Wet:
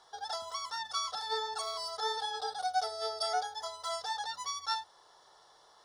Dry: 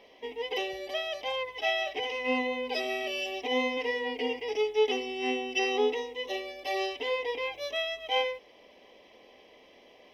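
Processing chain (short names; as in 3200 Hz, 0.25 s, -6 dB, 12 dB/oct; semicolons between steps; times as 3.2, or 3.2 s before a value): speed mistake 45 rpm record played at 78 rpm; notches 50/100 Hz; gain -5 dB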